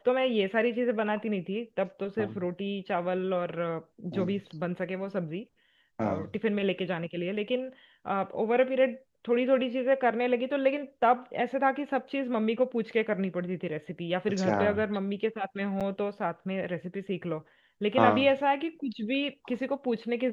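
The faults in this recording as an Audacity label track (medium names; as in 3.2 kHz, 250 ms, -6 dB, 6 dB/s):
15.800000	15.810000	dropout 7.1 ms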